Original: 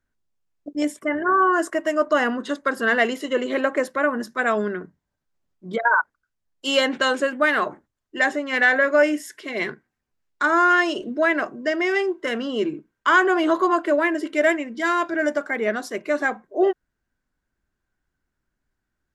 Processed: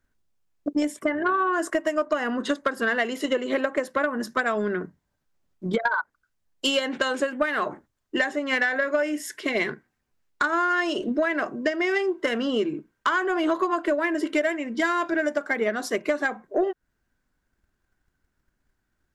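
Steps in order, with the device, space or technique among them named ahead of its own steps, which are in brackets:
drum-bus smash (transient designer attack +7 dB, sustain +1 dB; downward compressor 6 to 1, threshold −23 dBFS, peak gain reduction 14.5 dB; soft clipping −15 dBFS, distortion −22 dB)
level +3 dB

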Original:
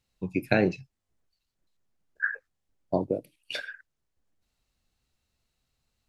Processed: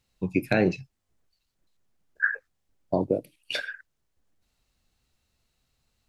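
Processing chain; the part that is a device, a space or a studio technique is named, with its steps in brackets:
clipper into limiter (hard clipping −9.5 dBFS, distortion −29 dB; brickwall limiter −15 dBFS, peak gain reduction 5.5 dB)
level +4 dB

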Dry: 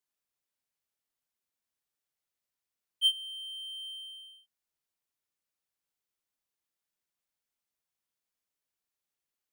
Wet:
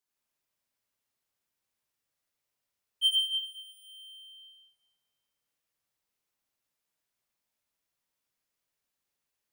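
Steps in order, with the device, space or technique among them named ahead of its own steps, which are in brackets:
stairwell (convolution reverb RT60 1.7 s, pre-delay 68 ms, DRR −3 dB)

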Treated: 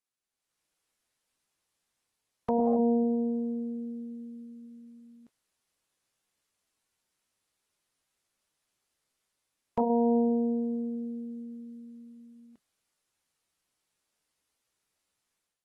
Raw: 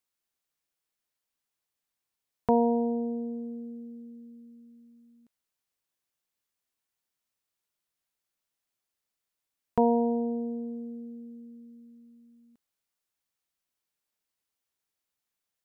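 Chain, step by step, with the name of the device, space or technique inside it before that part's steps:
0:02.50–0:03.14: notch filter 990 Hz, Q 7.8
low-bitrate web radio (automatic gain control gain up to 11 dB; brickwall limiter −13 dBFS, peak gain reduction 9.5 dB; level −5.5 dB; AAC 32 kbit/s 32,000 Hz)

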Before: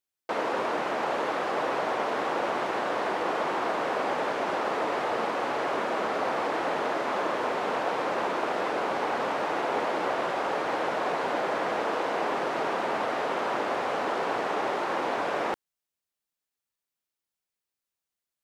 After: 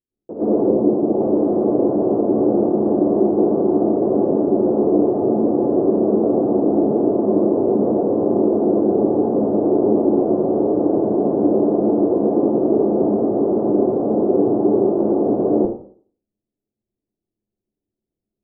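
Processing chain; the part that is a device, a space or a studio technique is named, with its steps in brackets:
next room (low-pass filter 420 Hz 24 dB per octave; convolution reverb RT60 0.50 s, pre-delay 99 ms, DRR −12 dB)
0:00.71–0:01.21: Bessel low-pass filter 990 Hz, order 2
level +8 dB

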